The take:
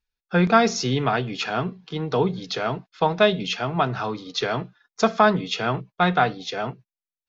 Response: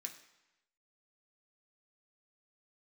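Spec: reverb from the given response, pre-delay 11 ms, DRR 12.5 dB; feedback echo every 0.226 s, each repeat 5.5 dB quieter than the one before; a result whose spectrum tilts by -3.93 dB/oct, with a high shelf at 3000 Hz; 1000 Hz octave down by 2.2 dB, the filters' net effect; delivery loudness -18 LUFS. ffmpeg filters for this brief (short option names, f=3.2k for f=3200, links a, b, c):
-filter_complex "[0:a]equalizer=f=1k:t=o:g=-4.5,highshelf=f=3k:g=8.5,aecho=1:1:226|452|678|904|1130|1356|1582:0.531|0.281|0.149|0.079|0.0419|0.0222|0.0118,asplit=2[a][b];[1:a]atrim=start_sample=2205,adelay=11[c];[b][c]afir=irnorm=-1:irlink=0,volume=-8.5dB[d];[a][d]amix=inputs=2:normalize=0,volume=3.5dB"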